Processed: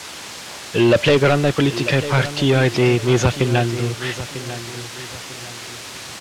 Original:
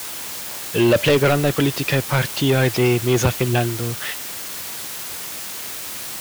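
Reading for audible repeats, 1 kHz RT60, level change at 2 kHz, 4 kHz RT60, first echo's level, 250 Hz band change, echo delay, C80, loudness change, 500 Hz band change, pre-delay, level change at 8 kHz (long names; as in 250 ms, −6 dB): 3, no reverb audible, +1.5 dB, no reverb audible, −13.0 dB, +1.5 dB, 946 ms, no reverb audible, +2.5 dB, +1.5 dB, no reverb audible, −3.5 dB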